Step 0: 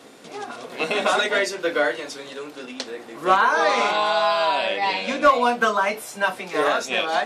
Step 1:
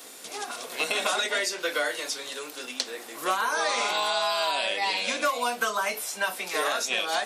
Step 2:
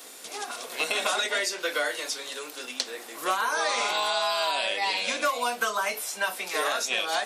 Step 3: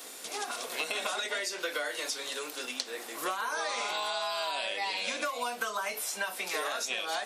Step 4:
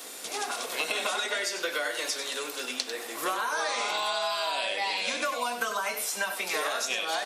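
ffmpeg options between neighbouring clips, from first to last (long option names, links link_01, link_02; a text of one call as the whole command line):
ffmpeg -i in.wav -filter_complex "[0:a]aemphasis=mode=production:type=riaa,acrossover=split=450|6200[link_01][link_02][link_03];[link_01]acompressor=threshold=-35dB:ratio=4[link_04];[link_02]acompressor=threshold=-23dB:ratio=4[link_05];[link_03]acompressor=threshold=-37dB:ratio=4[link_06];[link_04][link_05][link_06]amix=inputs=3:normalize=0,volume=-2dB" out.wav
ffmpeg -i in.wav -af "equalizer=frequency=91:width_type=o:width=2.5:gain=-5.5" out.wav
ffmpeg -i in.wav -af "acompressor=threshold=-30dB:ratio=6" out.wav
ffmpeg -i in.wav -filter_complex "[0:a]asplit=2[link_01][link_02];[link_02]aecho=0:1:96:0.355[link_03];[link_01][link_03]amix=inputs=2:normalize=0,volume=3dB" -ar 48000 -c:a libopus -b:a 256k out.opus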